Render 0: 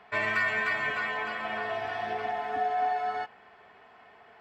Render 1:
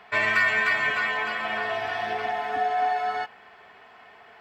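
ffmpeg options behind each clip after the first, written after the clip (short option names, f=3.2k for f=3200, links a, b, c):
-af "tiltshelf=f=1.3k:g=-3,volume=5dB"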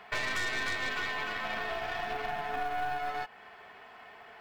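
-af "aeval=exprs='0.316*(cos(1*acos(clip(val(0)/0.316,-1,1)))-cos(1*PI/2))+0.0794*(cos(5*acos(clip(val(0)/0.316,-1,1)))-cos(5*PI/2))+0.1*(cos(6*acos(clip(val(0)/0.316,-1,1)))-cos(6*PI/2))':c=same,acrusher=bits=8:mode=log:mix=0:aa=0.000001,acompressor=threshold=-27dB:ratio=2,volume=-8dB"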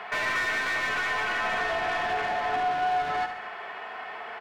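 -filter_complex "[0:a]asplit=2[a][b];[b]highpass=f=720:p=1,volume=22dB,asoftclip=type=tanh:threshold=-19dB[c];[a][c]amix=inputs=2:normalize=0,lowpass=f=1.8k:p=1,volume=-6dB,aecho=1:1:71|142|213|284|355|426|497:0.335|0.194|0.113|0.0654|0.0379|0.022|0.0128"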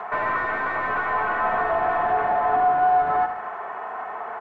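-af "lowpass=f=1.1k:t=q:w=1.6,volume=4.5dB" -ar 16000 -c:a g722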